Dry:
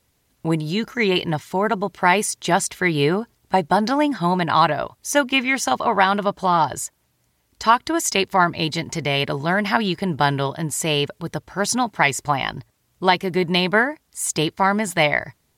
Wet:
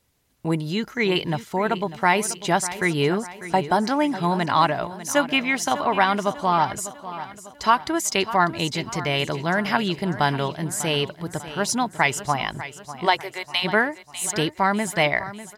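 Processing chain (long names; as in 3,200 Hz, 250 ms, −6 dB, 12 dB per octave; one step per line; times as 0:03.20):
0:13.05–0:13.63: high-pass filter 320 Hz → 910 Hz 24 dB per octave
repeating echo 597 ms, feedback 47%, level −14 dB
level −2.5 dB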